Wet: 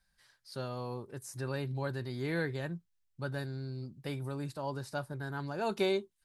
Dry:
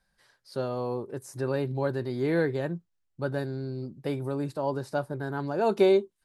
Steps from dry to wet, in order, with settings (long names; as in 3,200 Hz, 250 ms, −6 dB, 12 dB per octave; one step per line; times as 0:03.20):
parametric band 430 Hz −10.5 dB 2.7 octaves